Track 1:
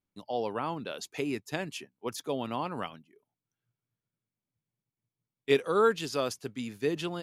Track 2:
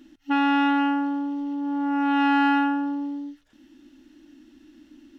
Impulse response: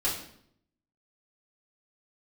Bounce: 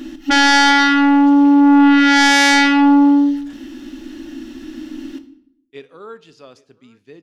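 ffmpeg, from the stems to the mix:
-filter_complex "[0:a]lowpass=6200,adelay=250,volume=0.251,asplit=3[s0][s1][s2];[s1]volume=0.0944[s3];[s2]volume=0.0668[s4];[1:a]aeval=exprs='0.251*sin(PI/2*3.98*val(0)/0.251)':c=same,volume=1.19,asplit=2[s5][s6];[s6]volume=0.2[s7];[2:a]atrim=start_sample=2205[s8];[s3][s7]amix=inputs=2:normalize=0[s9];[s9][s8]afir=irnorm=-1:irlink=0[s10];[s4]aecho=0:1:821:1[s11];[s0][s5][s10][s11]amix=inputs=4:normalize=0"

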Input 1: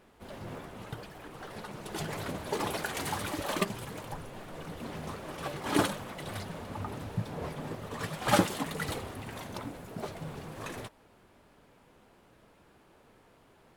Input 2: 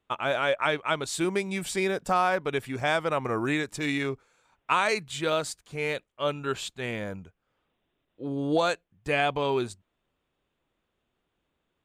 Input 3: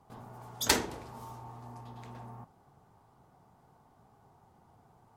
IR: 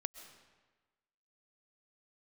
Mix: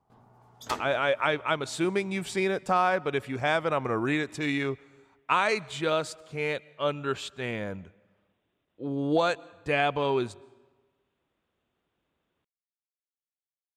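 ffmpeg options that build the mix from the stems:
-filter_complex "[1:a]highpass=55,adelay=600,volume=0.841,asplit=2[s0][s1];[s1]volume=0.282[s2];[2:a]volume=0.335[s3];[3:a]atrim=start_sample=2205[s4];[s2][s4]afir=irnorm=-1:irlink=0[s5];[s0][s3][s5]amix=inputs=3:normalize=0,highshelf=f=7100:g=-10"

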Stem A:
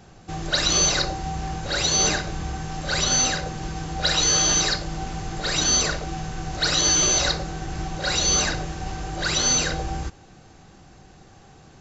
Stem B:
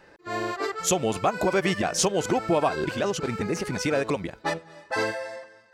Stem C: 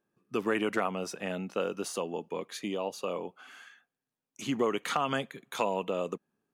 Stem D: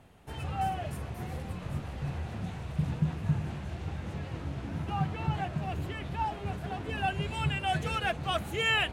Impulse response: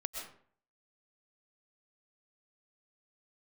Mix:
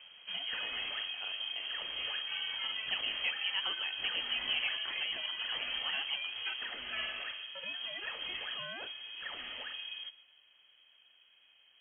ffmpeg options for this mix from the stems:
-filter_complex "[0:a]adynamicequalizer=threshold=0.0158:dfrequency=1900:dqfactor=0.7:tfrequency=1900:tqfactor=0.7:attack=5:release=100:ratio=0.375:range=1.5:mode=cutabove:tftype=highshelf,volume=0.126,asplit=2[s0][s1];[s1]volume=0.335[s2];[1:a]adelay=2000,volume=0.178,asplit=2[s3][s4];[s4]volume=0.335[s5];[2:a]acompressor=threshold=0.0158:ratio=6,volume=0.562[s6];[3:a]acompressor=threshold=0.0126:ratio=6,alimiter=level_in=4.22:limit=0.0631:level=0:latency=1:release=192,volume=0.237,volume=1.33,asplit=3[s7][s8][s9];[s7]atrim=end=6.65,asetpts=PTS-STARTPTS,afade=t=out:st=6.646:d=0.004:c=hsin[s10];[s8]atrim=start=6.65:end=7.55,asetpts=PTS-STARTPTS,volume=0[s11];[s9]atrim=start=7.55,asetpts=PTS-STARTPTS,afade=t=in:d=0.004:c=hsin[s12];[s10][s11][s12]concat=n=3:v=0:a=1[s13];[4:a]atrim=start_sample=2205[s14];[s2][s5]amix=inputs=2:normalize=0[s15];[s15][s14]afir=irnorm=-1:irlink=0[s16];[s0][s3][s6][s13][s16]amix=inputs=5:normalize=0,equalizer=f=540:t=o:w=0.23:g=-3.5,lowpass=f=2800:t=q:w=0.5098,lowpass=f=2800:t=q:w=0.6013,lowpass=f=2800:t=q:w=0.9,lowpass=f=2800:t=q:w=2.563,afreqshift=-3300"

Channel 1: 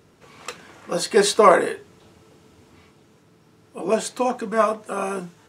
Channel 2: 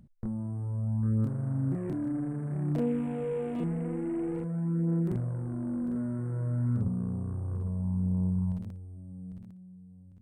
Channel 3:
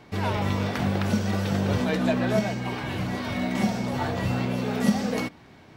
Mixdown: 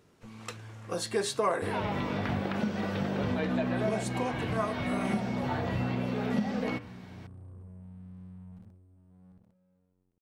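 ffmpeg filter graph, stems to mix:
-filter_complex "[0:a]volume=0.422[s0];[1:a]alimiter=level_in=1.78:limit=0.0631:level=0:latency=1:release=23,volume=0.562,aeval=exprs='sgn(val(0))*max(abs(val(0))-0.00282,0)':c=same,volume=0.266[s1];[2:a]bandreject=f=96.9:t=h:w=4,bandreject=f=193.8:t=h:w=4,bandreject=f=290.7:t=h:w=4,bandreject=f=387.6:t=h:w=4,bandreject=f=484.5:t=h:w=4,bandreject=f=581.4:t=h:w=4,bandreject=f=678.3:t=h:w=4,bandreject=f=775.2:t=h:w=4,bandreject=f=872.1:t=h:w=4,bandreject=f=969:t=h:w=4,bandreject=f=1065.9:t=h:w=4,bandreject=f=1162.8:t=h:w=4,bandreject=f=1259.7:t=h:w=4,bandreject=f=1356.6:t=h:w=4,bandreject=f=1453.5:t=h:w=4,bandreject=f=1550.4:t=h:w=4,bandreject=f=1647.3:t=h:w=4,bandreject=f=1744.2:t=h:w=4,bandreject=f=1841.1:t=h:w=4,bandreject=f=1938:t=h:w=4,bandreject=f=2034.9:t=h:w=4,bandreject=f=2131.8:t=h:w=4,bandreject=f=2228.7:t=h:w=4,bandreject=f=2325.6:t=h:w=4,bandreject=f=2422.5:t=h:w=4,bandreject=f=2519.4:t=h:w=4,bandreject=f=2616.3:t=h:w=4,bandreject=f=2713.2:t=h:w=4,bandreject=f=2810.1:t=h:w=4,bandreject=f=2907:t=h:w=4,bandreject=f=3003.9:t=h:w=4,bandreject=f=3100.8:t=h:w=4,acrossover=split=3800[s2][s3];[s3]acompressor=threshold=0.00141:ratio=4:attack=1:release=60[s4];[s2][s4]amix=inputs=2:normalize=0,adelay=1500,volume=0.944[s5];[s0][s1][s5]amix=inputs=3:normalize=0,acompressor=threshold=0.0316:ratio=2"

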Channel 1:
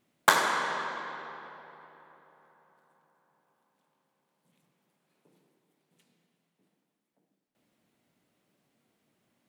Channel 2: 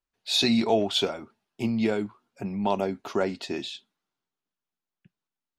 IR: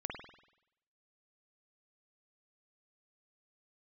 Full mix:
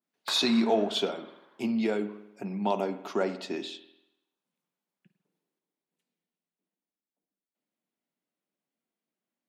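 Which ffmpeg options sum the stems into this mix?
-filter_complex "[0:a]volume=0.15[s0];[1:a]volume=0.562,asplit=2[s1][s2];[s2]volume=0.501[s3];[2:a]atrim=start_sample=2205[s4];[s3][s4]afir=irnorm=-1:irlink=0[s5];[s0][s1][s5]amix=inputs=3:normalize=0,highpass=f=170:w=0.5412,highpass=f=170:w=1.3066,adynamicequalizer=threshold=0.00794:dfrequency=1900:dqfactor=0.7:tfrequency=1900:tqfactor=0.7:attack=5:release=100:ratio=0.375:range=2:mode=cutabove:tftype=highshelf"

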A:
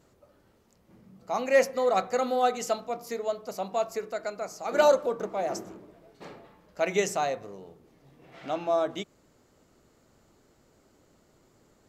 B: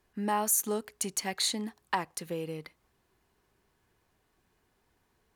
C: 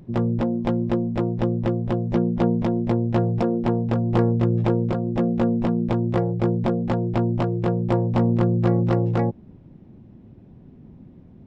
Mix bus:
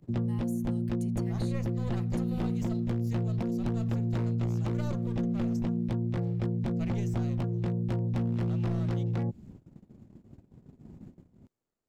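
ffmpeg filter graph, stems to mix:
-filter_complex "[0:a]aeval=exprs='if(lt(val(0),0),0.251*val(0),val(0))':c=same,volume=0.596[s0];[1:a]aecho=1:1:5.8:0.91,dynaudnorm=f=150:g=9:m=3.98,volume=0.119[s1];[2:a]aeval=exprs='0.224*(abs(mod(val(0)/0.224+3,4)-2)-1)':c=same,volume=0.891[s2];[s0][s1][s2]amix=inputs=3:normalize=0,agate=range=0.112:threshold=0.00562:ratio=16:detection=peak,acrossover=split=250|2100[s3][s4][s5];[s3]acompressor=threshold=0.0398:ratio=4[s6];[s4]acompressor=threshold=0.00708:ratio=4[s7];[s5]acompressor=threshold=0.00224:ratio=4[s8];[s6][s7][s8]amix=inputs=3:normalize=0"

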